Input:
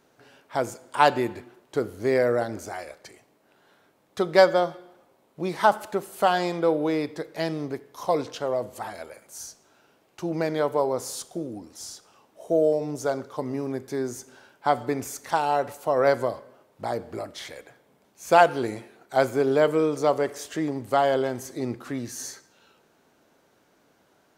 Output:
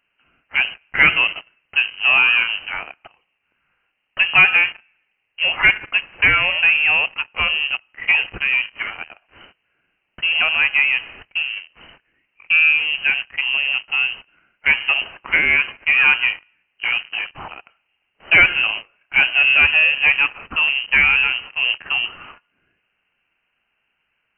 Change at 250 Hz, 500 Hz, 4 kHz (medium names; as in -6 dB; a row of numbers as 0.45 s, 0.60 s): -11.5 dB, -15.0 dB, +18.0 dB